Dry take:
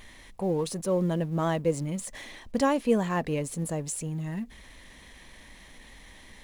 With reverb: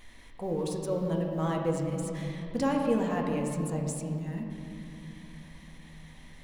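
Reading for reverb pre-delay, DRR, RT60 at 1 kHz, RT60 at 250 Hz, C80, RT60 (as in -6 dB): 4 ms, 0.5 dB, 2.6 s, 4.3 s, 4.0 dB, 2.8 s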